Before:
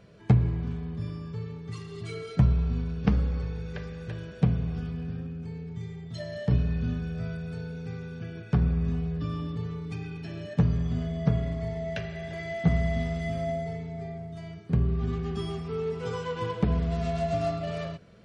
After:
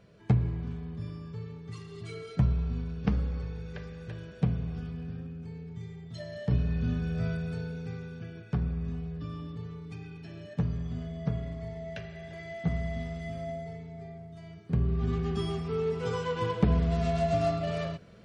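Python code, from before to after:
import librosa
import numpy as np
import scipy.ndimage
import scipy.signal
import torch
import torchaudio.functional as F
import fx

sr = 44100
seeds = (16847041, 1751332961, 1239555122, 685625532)

y = fx.gain(x, sr, db=fx.line((6.4, -4.0), (7.27, 3.0), (8.64, -6.5), (14.4, -6.5), (15.17, 1.0)))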